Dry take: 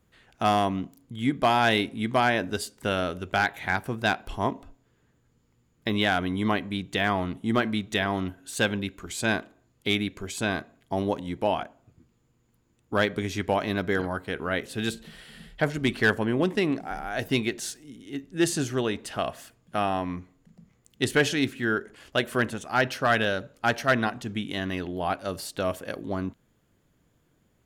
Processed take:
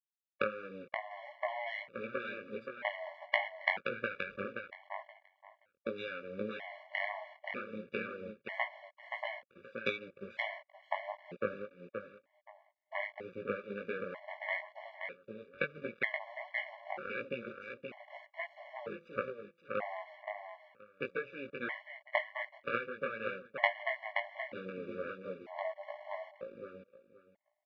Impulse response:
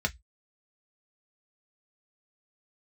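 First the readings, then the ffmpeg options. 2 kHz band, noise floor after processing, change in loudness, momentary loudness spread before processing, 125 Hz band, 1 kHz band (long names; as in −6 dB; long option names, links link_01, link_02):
−9.5 dB, −78 dBFS, −12.5 dB, 10 LU, −23.0 dB, −13.5 dB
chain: -af "aeval=exprs='if(lt(val(0),0),0.447*val(0),val(0))':channel_layout=same,afwtdn=0.0224,adynamicequalizer=threshold=0.00891:dfrequency=1100:dqfactor=0.9:tfrequency=1100:tqfactor=0.9:attack=5:release=100:ratio=0.375:range=4:mode=cutabove:tftype=bell,acompressor=threshold=-36dB:ratio=10,aeval=exprs='0.1*(cos(1*acos(clip(val(0)/0.1,-1,1)))-cos(1*PI/2))+0.0447*(cos(2*acos(clip(val(0)/0.1,-1,1)))-cos(2*PI/2))+0.0282*(cos(3*acos(clip(val(0)/0.1,-1,1)))-cos(3*PI/2))+0.00631*(cos(4*acos(clip(val(0)/0.1,-1,1)))-cos(4*PI/2))':channel_layout=same,flanger=delay=16.5:depth=3.8:speed=1.5,acrusher=bits=10:mix=0:aa=0.000001,highpass=220,equalizer=frequency=300:width_type=q:width=4:gain=-10,equalizer=frequency=540:width_type=q:width=4:gain=8,equalizer=frequency=2100:width_type=q:width=4:gain=10,lowpass=frequency=3100:width=0.5412,lowpass=frequency=3100:width=1.3066,aecho=1:1:525|1050|1575:0.501|0.0902|0.0162,afftfilt=real='re*gt(sin(2*PI*0.53*pts/sr)*(1-2*mod(floor(b*sr/1024/570),2)),0)':imag='im*gt(sin(2*PI*0.53*pts/sr)*(1-2*mod(floor(b*sr/1024/570),2)),0)':win_size=1024:overlap=0.75,volume=15dB"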